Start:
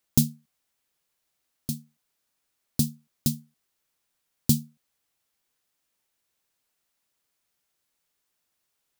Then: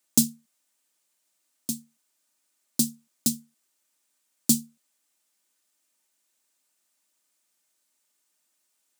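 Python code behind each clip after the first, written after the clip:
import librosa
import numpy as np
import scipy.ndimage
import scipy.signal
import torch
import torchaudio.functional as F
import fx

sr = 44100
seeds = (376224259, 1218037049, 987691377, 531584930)

y = scipy.signal.sosfilt(scipy.signal.cheby1(3, 1.0, 180.0, 'highpass', fs=sr, output='sos'), x)
y = fx.peak_eq(y, sr, hz=8000.0, db=8.0, octaves=0.92)
y = y + 0.43 * np.pad(y, (int(3.3 * sr / 1000.0), 0))[:len(y)]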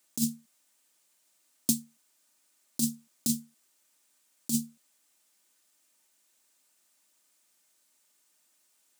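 y = fx.over_compress(x, sr, threshold_db=-26.0, ratio=-1.0)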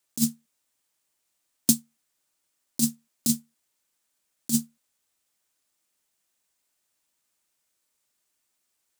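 y = fx.quant_companded(x, sr, bits=6)
y = fx.upward_expand(y, sr, threshold_db=-51.0, expansion=1.5)
y = y * librosa.db_to_amplitude(6.5)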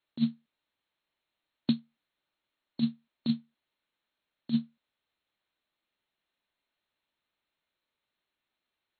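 y = fx.brickwall_lowpass(x, sr, high_hz=4300.0)
y = y * librosa.db_to_amplitude(-2.0)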